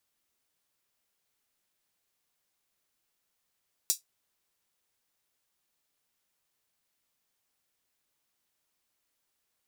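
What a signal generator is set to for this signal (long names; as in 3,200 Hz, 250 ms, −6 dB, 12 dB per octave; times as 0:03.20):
closed synth hi-hat, high-pass 5,500 Hz, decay 0.14 s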